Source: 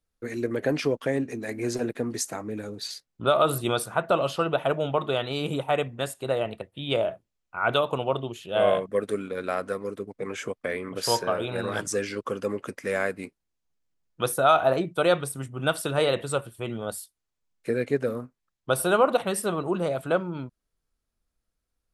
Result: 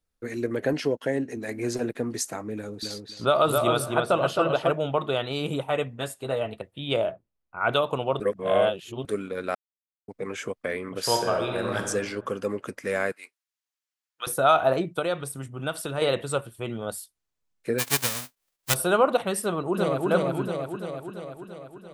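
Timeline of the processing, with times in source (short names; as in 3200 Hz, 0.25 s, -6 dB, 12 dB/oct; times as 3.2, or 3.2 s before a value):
0.73–1.37 notch comb 1200 Hz
2.56–4.71 darkening echo 0.266 s, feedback 22%, low-pass 3600 Hz, level -3 dB
5.65–6.56 notch comb 180 Hz
7.11–7.61 LPF 1200 Hz 6 dB/oct
8.2–9.05 reverse
9.55–10.08 mute
11.07–11.84 reverb throw, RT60 1.3 s, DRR 4.5 dB
13.12–14.27 HPF 1300 Hz
14.99–16.02 compressor 1.5:1, threshold -33 dBFS
17.78–18.73 spectral whitening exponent 0.1
19.43–20.08 echo throw 0.34 s, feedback 65%, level -0.5 dB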